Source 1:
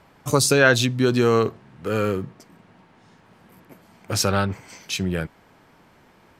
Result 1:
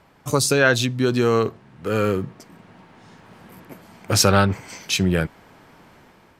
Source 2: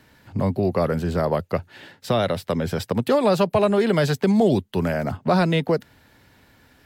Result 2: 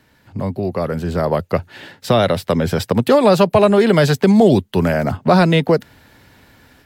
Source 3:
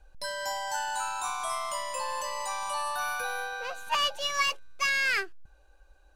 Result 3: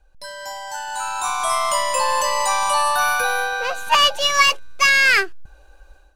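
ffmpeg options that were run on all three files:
-af "dynaudnorm=f=850:g=3:m=5.96,volume=0.891"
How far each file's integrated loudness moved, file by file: +1.0 LU, +6.0 LU, +12.5 LU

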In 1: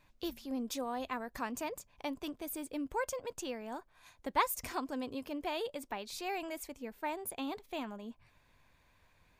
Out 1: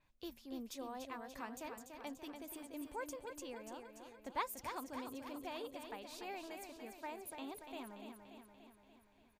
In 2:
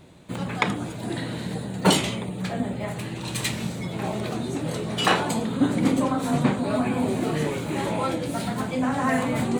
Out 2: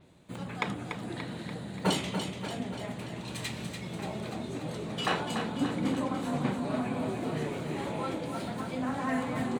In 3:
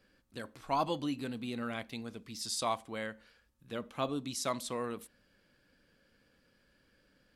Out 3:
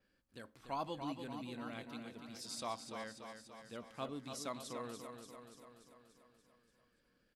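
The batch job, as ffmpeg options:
-af "aecho=1:1:290|580|870|1160|1450|1740|2030|2320:0.447|0.268|0.161|0.0965|0.0579|0.0347|0.0208|0.0125,adynamicequalizer=threshold=0.00398:dfrequency=6600:dqfactor=0.7:tfrequency=6600:tqfactor=0.7:attack=5:release=100:ratio=0.375:range=2.5:mode=cutabove:tftype=highshelf,volume=0.355"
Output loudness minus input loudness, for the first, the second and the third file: -8.0 LU, -8.0 LU, -8.5 LU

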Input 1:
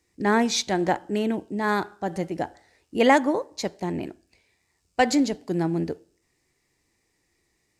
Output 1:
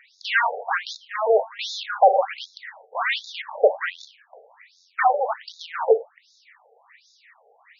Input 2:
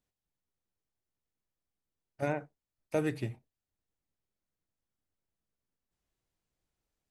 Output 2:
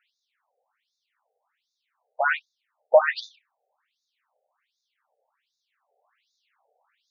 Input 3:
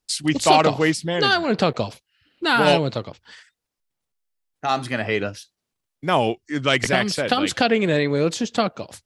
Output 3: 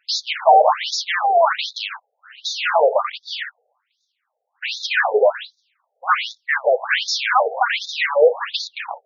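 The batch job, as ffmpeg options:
-filter_complex "[0:a]asplit=2[s0][s1];[s1]highpass=f=720:p=1,volume=79.4,asoftclip=type=tanh:threshold=0.891[s2];[s0][s2]amix=inputs=2:normalize=0,lowpass=f=1300:p=1,volume=0.501,afftfilt=real='re*between(b*sr/1024,570*pow(5000/570,0.5+0.5*sin(2*PI*1.3*pts/sr))/1.41,570*pow(5000/570,0.5+0.5*sin(2*PI*1.3*pts/sr))*1.41)':imag='im*between(b*sr/1024,570*pow(5000/570,0.5+0.5*sin(2*PI*1.3*pts/sr))/1.41,570*pow(5000/570,0.5+0.5*sin(2*PI*1.3*pts/sr))*1.41)':win_size=1024:overlap=0.75"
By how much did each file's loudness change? +2.0 LU, +12.5 LU, +2.0 LU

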